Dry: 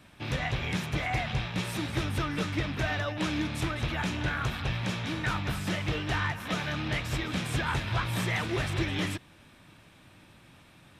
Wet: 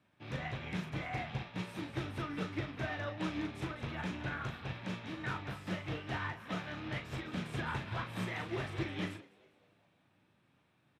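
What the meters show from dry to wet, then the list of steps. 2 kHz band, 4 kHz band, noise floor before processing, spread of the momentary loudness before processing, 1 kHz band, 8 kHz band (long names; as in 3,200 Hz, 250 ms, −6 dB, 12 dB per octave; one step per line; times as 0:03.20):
−9.0 dB, −11.5 dB, −56 dBFS, 2 LU, −8.0 dB, −15.5 dB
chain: high-pass filter 97 Hz
high-shelf EQ 4,100 Hz −10.5 dB
double-tracking delay 38 ms −6 dB
echo with shifted repeats 204 ms, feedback 54%, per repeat +100 Hz, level −16.5 dB
expander for the loud parts 1.5 to 1, over −46 dBFS
level −6 dB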